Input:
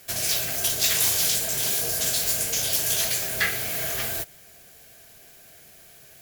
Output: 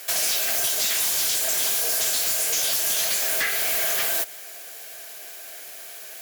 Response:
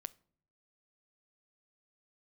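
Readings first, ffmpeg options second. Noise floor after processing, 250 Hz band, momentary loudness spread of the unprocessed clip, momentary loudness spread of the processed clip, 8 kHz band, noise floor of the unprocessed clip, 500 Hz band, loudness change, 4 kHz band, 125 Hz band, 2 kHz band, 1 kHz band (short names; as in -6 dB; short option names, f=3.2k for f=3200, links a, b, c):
-40 dBFS, -5.0 dB, 6 LU, 16 LU, +1.5 dB, -50 dBFS, +1.0 dB, +1.5 dB, +1.0 dB, under -10 dB, +1.5 dB, +2.5 dB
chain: -af "highpass=520,acompressor=threshold=-28dB:ratio=6,aeval=exprs='0.133*(cos(1*acos(clip(val(0)/0.133,-1,1)))-cos(1*PI/2))+0.0668*(cos(5*acos(clip(val(0)/0.133,-1,1)))-cos(5*PI/2))':c=same"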